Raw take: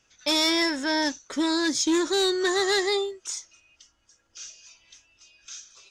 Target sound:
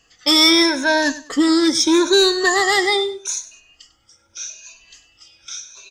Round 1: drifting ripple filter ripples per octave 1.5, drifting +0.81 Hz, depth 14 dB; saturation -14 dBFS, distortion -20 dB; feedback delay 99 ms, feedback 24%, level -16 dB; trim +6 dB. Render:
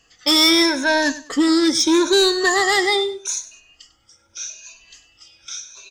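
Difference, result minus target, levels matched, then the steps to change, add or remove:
saturation: distortion +14 dB
change: saturation -6 dBFS, distortion -34 dB

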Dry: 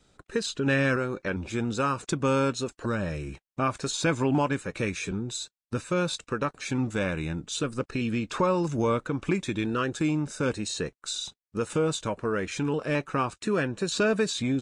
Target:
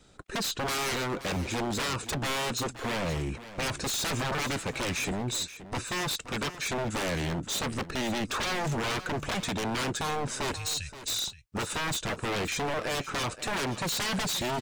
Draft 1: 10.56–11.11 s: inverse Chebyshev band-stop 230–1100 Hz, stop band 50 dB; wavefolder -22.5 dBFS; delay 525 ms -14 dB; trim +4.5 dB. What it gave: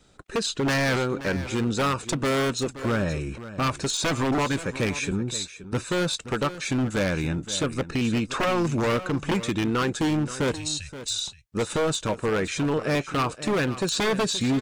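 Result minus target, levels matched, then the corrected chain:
wavefolder: distortion -17 dB
10.56–11.11 s: inverse Chebyshev band-stop 230–1100 Hz, stop band 50 dB; wavefolder -30 dBFS; delay 525 ms -14 dB; trim +4.5 dB

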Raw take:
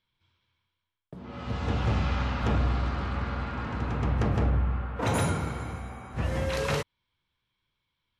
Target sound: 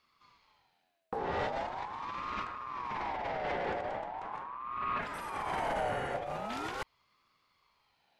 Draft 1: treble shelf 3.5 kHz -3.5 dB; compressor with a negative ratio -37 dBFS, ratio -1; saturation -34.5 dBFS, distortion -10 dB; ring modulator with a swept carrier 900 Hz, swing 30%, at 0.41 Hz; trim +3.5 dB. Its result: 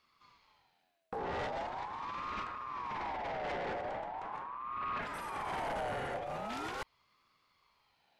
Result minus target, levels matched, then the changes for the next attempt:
saturation: distortion +7 dB
change: saturation -27.5 dBFS, distortion -17 dB

